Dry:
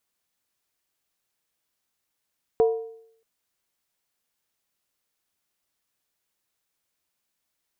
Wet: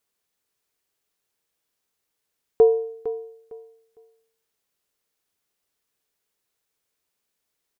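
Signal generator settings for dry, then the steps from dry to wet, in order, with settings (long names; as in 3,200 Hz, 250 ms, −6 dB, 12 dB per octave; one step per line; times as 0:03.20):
struck skin, lowest mode 451 Hz, decay 0.69 s, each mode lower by 11 dB, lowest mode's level −13.5 dB
parametric band 430 Hz +8 dB 0.31 octaves
repeating echo 456 ms, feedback 23%, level −13 dB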